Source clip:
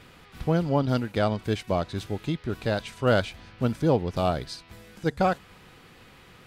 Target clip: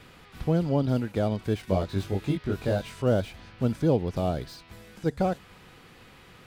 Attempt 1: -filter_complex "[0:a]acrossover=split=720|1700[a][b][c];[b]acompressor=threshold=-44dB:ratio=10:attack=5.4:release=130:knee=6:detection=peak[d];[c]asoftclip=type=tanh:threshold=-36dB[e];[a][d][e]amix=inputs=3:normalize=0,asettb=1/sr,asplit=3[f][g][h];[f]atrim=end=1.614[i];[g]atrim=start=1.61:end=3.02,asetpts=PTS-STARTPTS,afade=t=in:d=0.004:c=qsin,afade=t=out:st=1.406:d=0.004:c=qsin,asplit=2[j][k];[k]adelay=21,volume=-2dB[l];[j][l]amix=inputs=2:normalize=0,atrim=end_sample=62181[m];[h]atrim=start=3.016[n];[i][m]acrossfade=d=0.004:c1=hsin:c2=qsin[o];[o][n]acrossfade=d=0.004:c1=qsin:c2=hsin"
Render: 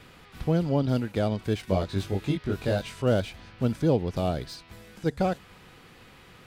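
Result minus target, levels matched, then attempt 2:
soft clip: distortion -5 dB
-filter_complex "[0:a]acrossover=split=720|1700[a][b][c];[b]acompressor=threshold=-44dB:ratio=10:attack=5.4:release=130:knee=6:detection=peak[d];[c]asoftclip=type=tanh:threshold=-43.5dB[e];[a][d][e]amix=inputs=3:normalize=0,asettb=1/sr,asplit=3[f][g][h];[f]atrim=end=1.614[i];[g]atrim=start=1.61:end=3.02,asetpts=PTS-STARTPTS,afade=t=in:d=0.004:c=qsin,afade=t=out:st=1.406:d=0.004:c=qsin,asplit=2[j][k];[k]adelay=21,volume=-2dB[l];[j][l]amix=inputs=2:normalize=0,atrim=end_sample=62181[m];[h]atrim=start=3.016[n];[i][m]acrossfade=d=0.004:c1=hsin:c2=qsin[o];[o][n]acrossfade=d=0.004:c1=qsin:c2=hsin"

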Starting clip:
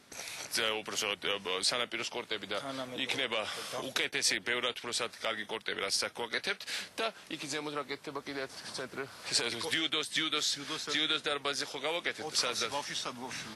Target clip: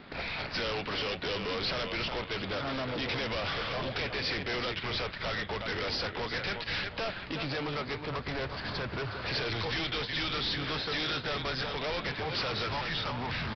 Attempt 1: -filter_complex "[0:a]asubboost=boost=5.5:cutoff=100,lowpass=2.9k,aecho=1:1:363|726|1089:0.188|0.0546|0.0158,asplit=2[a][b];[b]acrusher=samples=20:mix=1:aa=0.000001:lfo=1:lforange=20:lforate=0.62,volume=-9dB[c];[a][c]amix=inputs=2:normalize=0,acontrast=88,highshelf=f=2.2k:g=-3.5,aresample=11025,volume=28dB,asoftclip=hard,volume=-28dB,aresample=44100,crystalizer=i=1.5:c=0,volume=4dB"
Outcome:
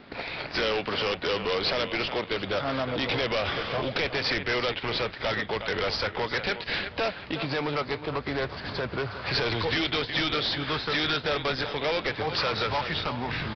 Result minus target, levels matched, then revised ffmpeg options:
decimation with a swept rate: distortion -15 dB; overloaded stage: distortion -4 dB
-filter_complex "[0:a]asubboost=boost=5.5:cutoff=100,lowpass=2.9k,aecho=1:1:363|726|1089:0.188|0.0546|0.0158,asplit=2[a][b];[b]acrusher=samples=72:mix=1:aa=0.000001:lfo=1:lforange=72:lforate=0.62,volume=-9dB[c];[a][c]amix=inputs=2:normalize=0,acontrast=88,highshelf=f=2.2k:g=-3.5,aresample=11025,volume=36dB,asoftclip=hard,volume=-36dB,aresample=44100,crystalizer=i=1.5:c=0,volume=4dB"

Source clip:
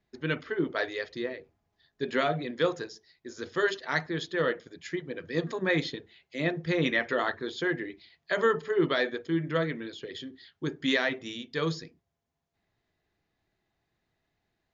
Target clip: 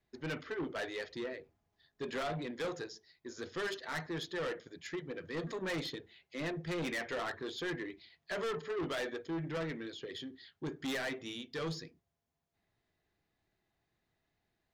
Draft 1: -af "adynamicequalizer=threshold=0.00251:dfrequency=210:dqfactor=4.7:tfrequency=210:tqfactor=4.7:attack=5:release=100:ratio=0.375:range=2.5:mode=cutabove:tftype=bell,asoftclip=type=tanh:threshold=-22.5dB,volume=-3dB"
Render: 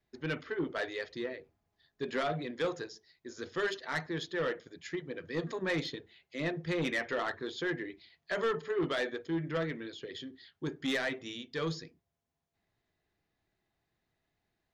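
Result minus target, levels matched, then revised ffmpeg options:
soft clip: distortion -7 dB
-af "adynamicequalizer=threshold=0.00251:dfrequency=210:dqfactor=4.7:tfrequency=210:tqfactor=4.7:attack=5:release=100:ratio=0.375:range=2.5:mode=cutabove:tftype=bell,asoftclip=type=tanh:threshold=-30.5dB,volume=-3dB"

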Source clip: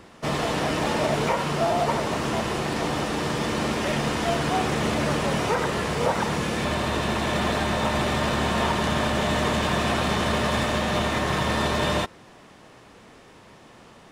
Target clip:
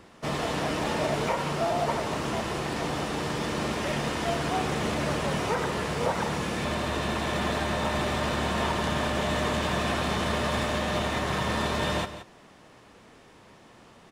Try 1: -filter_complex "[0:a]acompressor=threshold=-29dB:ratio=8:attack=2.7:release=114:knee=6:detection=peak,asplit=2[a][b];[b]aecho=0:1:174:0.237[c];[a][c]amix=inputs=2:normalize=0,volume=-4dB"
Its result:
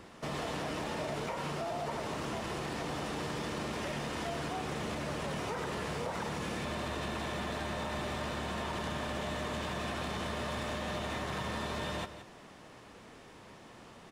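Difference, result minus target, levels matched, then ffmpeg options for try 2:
compressor: peak gain reduction +12.5 dB
-filter_complex "[0:a]asplit=2[a][b];[b]aecho=0:1:174:0.237[c];[a][c]amix=inputs=2:normalize=0,volume=-4dB"

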